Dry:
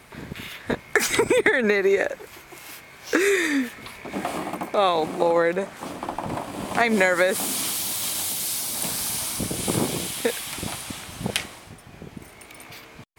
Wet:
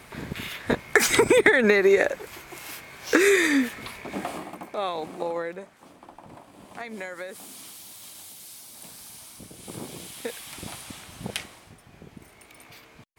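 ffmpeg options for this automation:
ffmpeg -i in.wav -af "volume=12dB,afade=type=out:start_time=3.81:duration=0.68:silence=0.298538,afade=type=out:start_time=5.26:duration=0.52:silence=0.398107,afade=type=in:start_time=9.59:duration=1.19:silence=0.298538" out.wav

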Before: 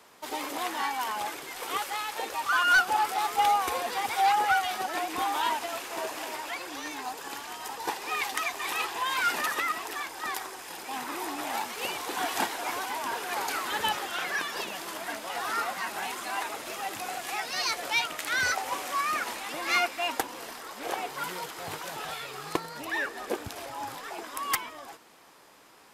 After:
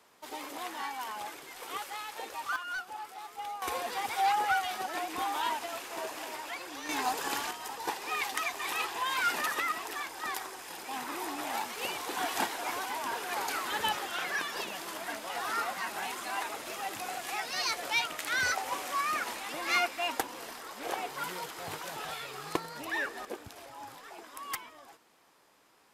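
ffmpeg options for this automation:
ffmpeg -i in.wav -af "asetnsamples=nb_out_samples=441:pad=0,asendcmd='2.56 volume volume -16dB;3.62 volume volume -4dB;6.89 volume volume 5dB;7.51 volume volume -2.5dB;23.25 volume volume -9dB',volume=-7dB" out.wav

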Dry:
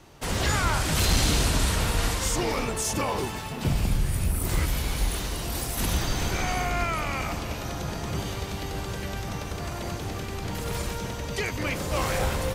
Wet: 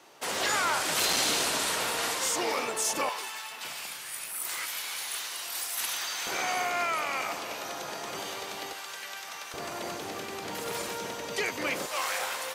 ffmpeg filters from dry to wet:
ffmpeg -i in.wav -af "asetnsamples=nb_out_samples=441:pad=0,asendcmd='3.09 highpass f 1200;6.27 highpass f 490;8.73 highpass f 1100;9.54 highpass f 330;11.86 highpass f 900',highpass=440" out.wav

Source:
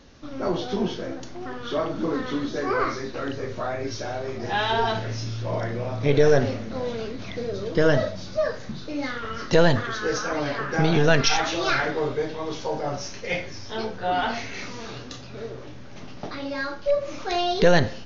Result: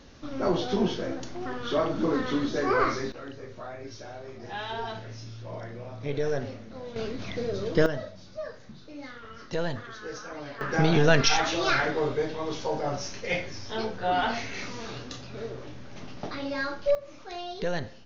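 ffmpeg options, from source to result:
ffmpeg -i in.wav -af "asetnsamples=nb_out_samples=441:pad=0,asendcmd='3.12 volume volume -11dB;6.96 volume volume -1dB;7.86 volume volume -12.5dB;10.61 volume volume -1.5dB;16.95 volume volume -13dB',volume=0dB" out.wav

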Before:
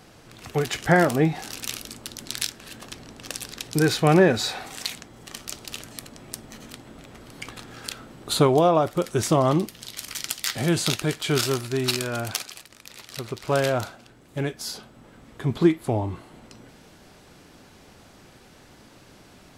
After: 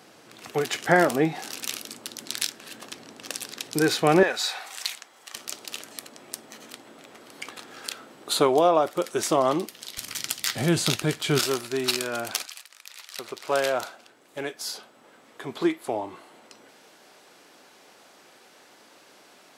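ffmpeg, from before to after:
ffmpeg -i in.wav -af "asetnsamples=nb_out_samples=441:pad=0,asendcmd='4.23 highpass f 780;5.35 highpass f 330;9.98 highpass f 93;11.39 highpass f 280;12.46 highpass f 1000;13.19 highpass f 420',highpass=240" out.wav

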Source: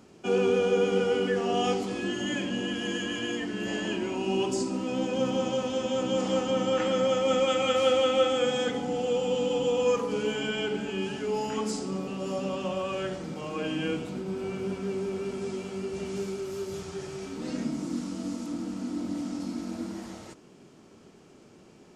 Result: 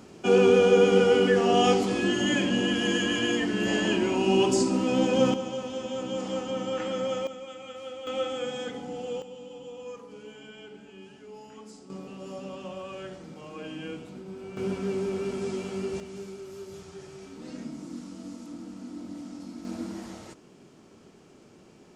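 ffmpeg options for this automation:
ffmpeg -i in.wav -af "asetnsamples=nb_out_samples=441:pad=0,asendcmd='5.34 volume volume -4.5dB;7.27 volume volume -16.5dB;8.07 volume volume -6.5dB;9.22 volume volume -16dB;11.9 volume volume -7.5dB;14.57 volume volume 2dB;16 volume volume -7dB;19.65 volume volume 0dB',volume=5.5dB" out.wav

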